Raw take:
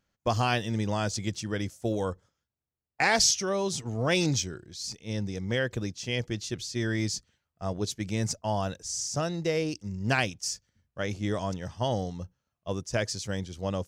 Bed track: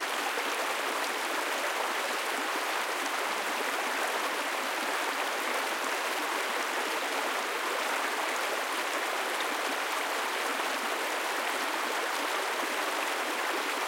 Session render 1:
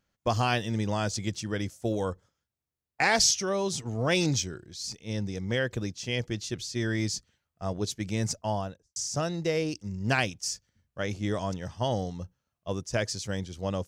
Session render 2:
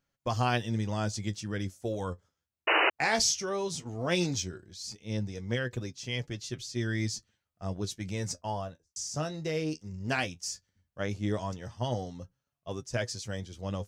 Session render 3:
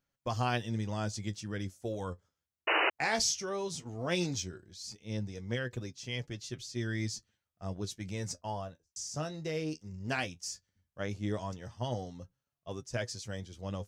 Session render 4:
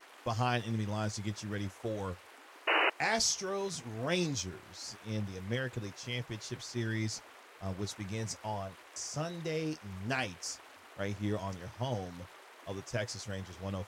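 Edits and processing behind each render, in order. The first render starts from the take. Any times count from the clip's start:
8.44–8.96 studio fade out
flange 0.16 Hz, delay 7 ms, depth 6.5 ms, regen +44%; 2.67–2.9 painted sound noise 300–3000 Hz -24 dBFS
gain -3.5 dB
add bed track -23.5 dB

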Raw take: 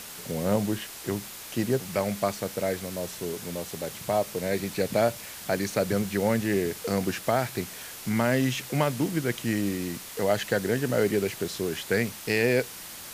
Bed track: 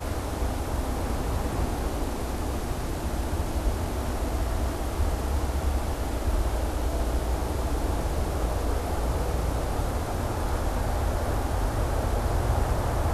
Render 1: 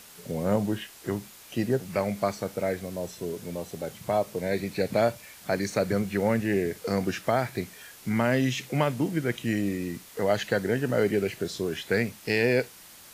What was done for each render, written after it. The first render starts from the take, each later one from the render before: noise print and reduce 8 dB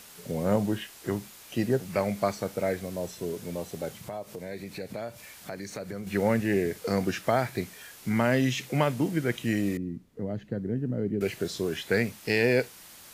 3.92–6.07 compressor 2.5:1, threshold -38 dBFS; 9.77–11.21 EQ curve 250 Hz 0 dB, 800 Hz -18 dB, 11000 Hz -29 dB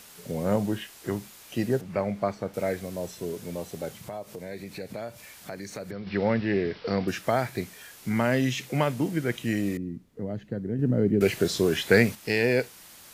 1.81–2.54 LPF 1700 Hz 6 dB/oct; 5.91–7.08 careless resampling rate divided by 4×, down none, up filtered; 10.79–12.15 gain +6.5 dB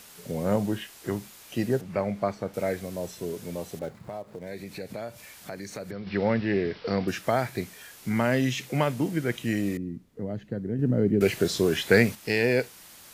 3.79–4.47 median filter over 15 samples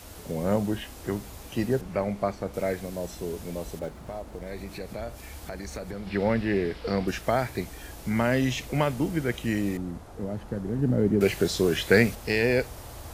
add bed track -16.5 dB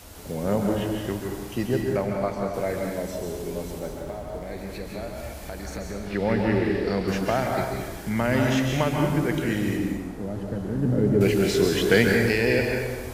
plate-style reverb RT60 1.4 s, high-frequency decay 0.75×, pre-delay 0.12 s, DRR 0.5 dB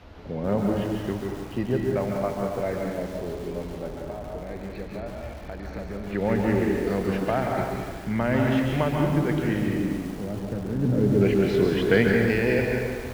air absorption 290 m; lo-fi delay 0.142 s, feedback 80%, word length 6-bit, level -12.5 dB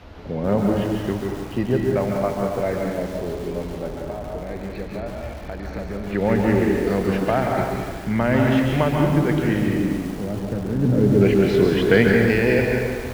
gain +4.5 dB; limiter -2 dBFS, peak gain reduction 0.5 dB

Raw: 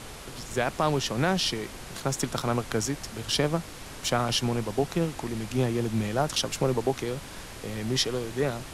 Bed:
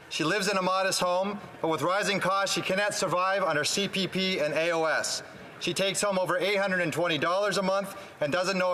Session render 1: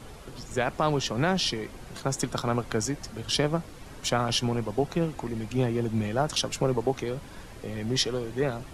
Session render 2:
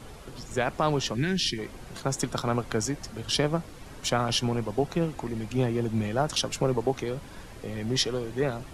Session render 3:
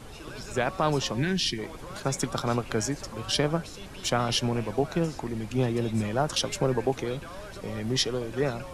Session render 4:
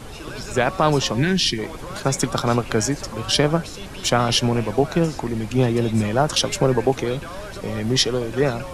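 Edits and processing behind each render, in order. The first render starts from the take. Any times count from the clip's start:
denoiser 9 dB, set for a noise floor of -42 dBFS
1.14–1.59 spectral gain 430–1500 Hz -18 dB
add bed -17.5 dB
gain +7.5 dB

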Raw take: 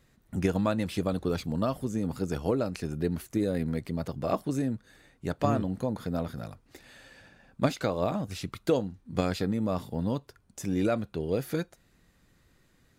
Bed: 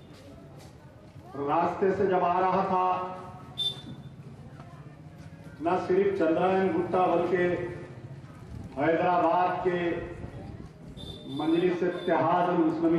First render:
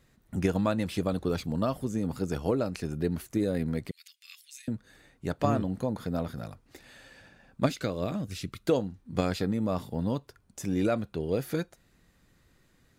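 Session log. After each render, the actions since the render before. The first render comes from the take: 3.91–4.68 steep high-pass 2200 Hz; 7.66–8.66 bell 850 Hz -10 dB 1 oct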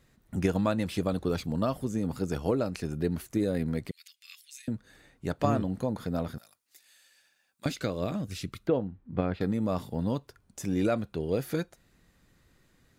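6.38–7.66 differentiator; 8.67–9.41 air absorption 500 m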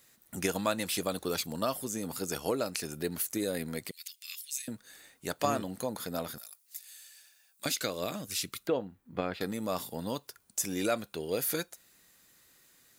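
RIAA curve recording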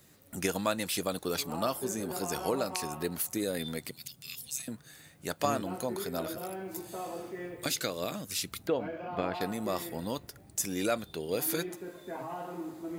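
add bed -15 dB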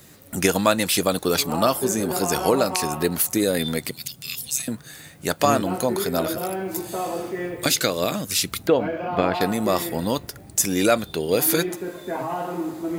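gain +11.5 dB; limiter -3 dBFS, peak gain reduction 2 dB

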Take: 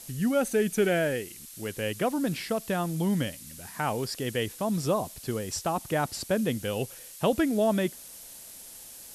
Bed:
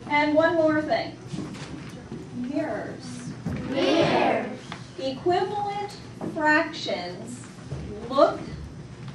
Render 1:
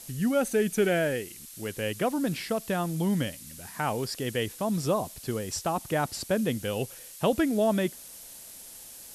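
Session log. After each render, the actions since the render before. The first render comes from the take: nothing audible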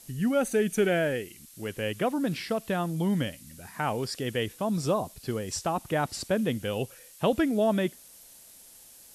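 noise print and reduce 6 dB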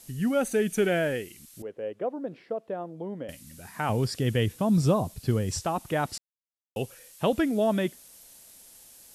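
1.62–3.29 band-pass 510 Hz, Q 1.8; 3.89–5.63 bell 99 Hz +11 dB 2.4 oct; 6.18–6.76 mute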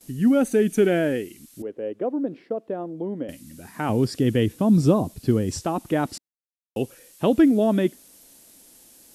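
gate with hold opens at -43 dBFS; bell 290 Hz +11 dB 1.1 oct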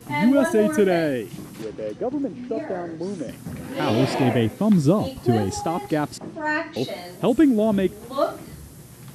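add bed -4 dB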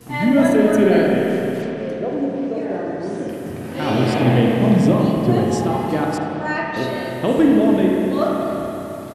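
echo 78 ms -21 dB; spring tank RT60 3.5 s, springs 32/47 ms, chirp 65 ms, DRR -2.5 dB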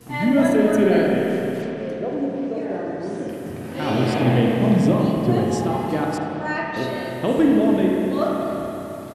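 gain -2.5 dB

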